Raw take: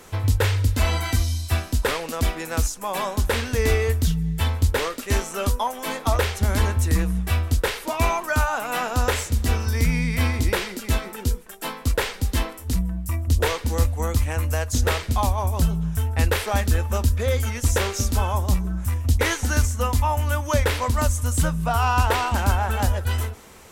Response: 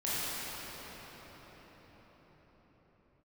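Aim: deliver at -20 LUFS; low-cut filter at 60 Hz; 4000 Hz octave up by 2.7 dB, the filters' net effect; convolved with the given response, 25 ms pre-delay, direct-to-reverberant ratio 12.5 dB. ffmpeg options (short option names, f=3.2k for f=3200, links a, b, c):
-filter_complex "[0:a]highpass=60,equalizer=f=4k:t=o:g=3.5,asplit=2[a][b];[1:a]atrim=start_sample=2205,adelay=25[c];[b][c]afir=irnorm=-1:irlink=0,volume=-21.5dB[d];[a][d]amix=inputs=2:normalize=0,volume=3.5dB"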